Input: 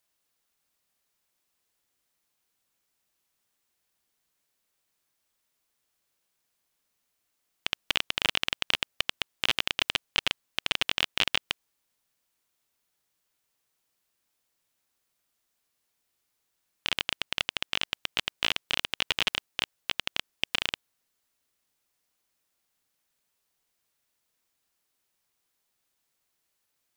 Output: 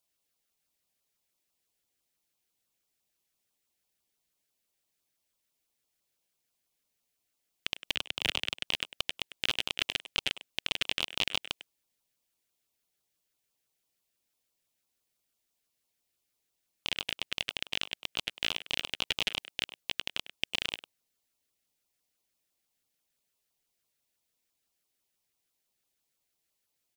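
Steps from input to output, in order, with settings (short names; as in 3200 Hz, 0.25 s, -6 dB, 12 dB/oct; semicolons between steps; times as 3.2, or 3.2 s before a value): speakerphone echo 0.1 s, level -11 dB; LFO notch saw down 6 Hz 820–2000 Hz; 7.95–8.63 three-band expander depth 100%; gain -3 dB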